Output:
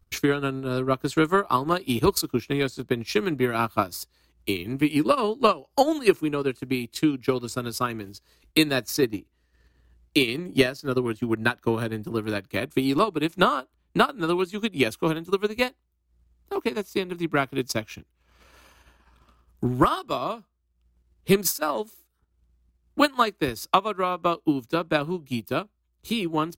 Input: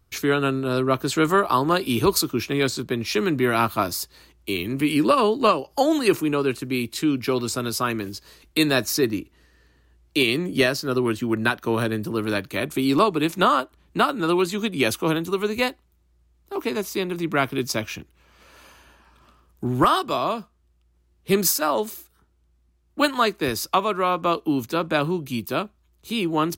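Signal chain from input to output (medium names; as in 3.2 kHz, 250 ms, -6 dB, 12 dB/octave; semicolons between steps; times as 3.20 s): bass shelf 68 Hz +8 dB; transient shaper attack +8 dB, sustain -9 dB; trim -5.5 dB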